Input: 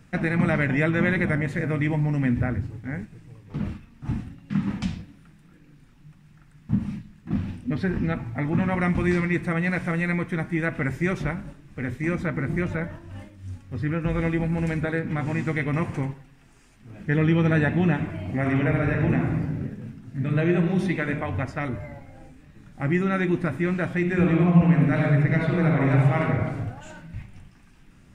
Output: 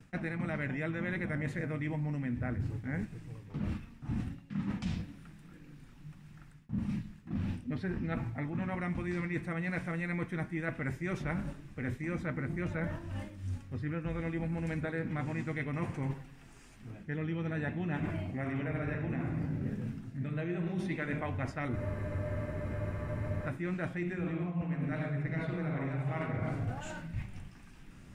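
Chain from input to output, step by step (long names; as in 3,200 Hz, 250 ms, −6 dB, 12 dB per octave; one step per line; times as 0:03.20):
reversed playback
downward compressor 20 to 1, threshold −31 dBFS, peak gain reduction 20.5 dB
reversed playback
noise gate with hold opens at −49 dBFS
frozen spectrum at 0:21.78, 1.69 s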